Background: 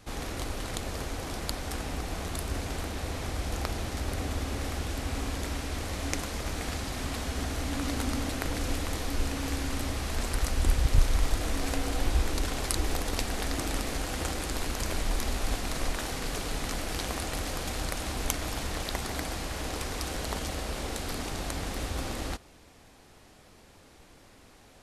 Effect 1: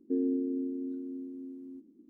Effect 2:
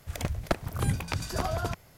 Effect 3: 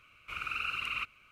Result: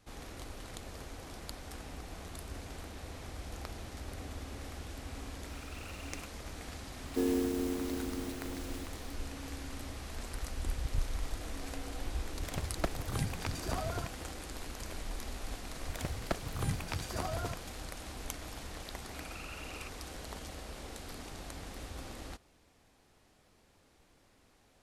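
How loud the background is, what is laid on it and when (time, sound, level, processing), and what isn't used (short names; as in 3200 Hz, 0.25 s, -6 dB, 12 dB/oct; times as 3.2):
background -11 dB
5.21 add 3 -17 dB + sample gate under -39.5 dBFS
7.06 add 1 -1 dB + spectral contrast lowered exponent 0.47
12.33 add 2 -7 dB
15.8 add 2 -7 dB
18.84 add 3 -14 dB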